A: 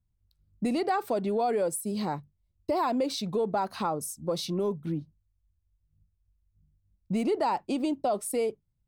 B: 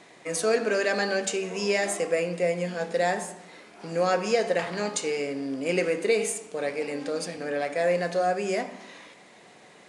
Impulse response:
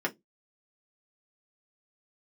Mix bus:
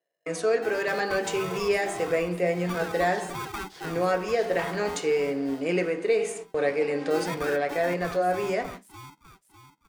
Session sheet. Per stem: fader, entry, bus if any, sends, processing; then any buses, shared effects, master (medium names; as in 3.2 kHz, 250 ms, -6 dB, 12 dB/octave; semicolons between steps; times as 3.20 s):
-14.5 dB, 0.00 s, send -9 dB, echo send -4 dB, treble shelf 7.4 kHz -7 dB; polarity switched at an audio rate 580 Hz
-2.0 dB, 0.00 s, send -13.5 dB, no echo send, low-pass 3.7 kHz 6 dB/octave; gate -40 dBFS, range -43 dB; bass shelf 130 Hz +6.5 dB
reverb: on, RT60 0.15 s, pre-delay 3 ms
echo: feedback delay 601 ms, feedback 38%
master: gain riding within 4 dB 0.5 s